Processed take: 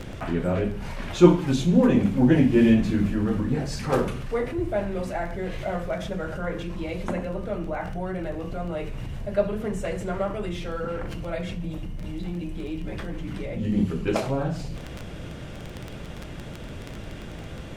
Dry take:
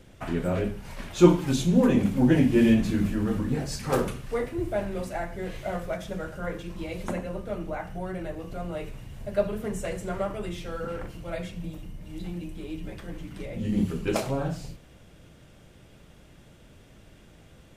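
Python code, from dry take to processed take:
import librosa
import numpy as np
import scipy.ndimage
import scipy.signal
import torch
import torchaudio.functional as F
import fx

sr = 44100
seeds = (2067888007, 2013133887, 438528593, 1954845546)

p1 = fx.dmg_crackle(x, sr, seeds[0], per_s=11.0, level_db=-35.0)
p2 = fx.high_shelf(p1, sr, hz=6800.0, db=-11.5)
p3 = fx.over_compress(p2, sr, threshold_db=-46.0, ratio=-1.0)
p4 = p2 + (p3 * librosa.db_to_amplitude(-2.5))
y = p4 * librosa.db_to_amplitude(2.0)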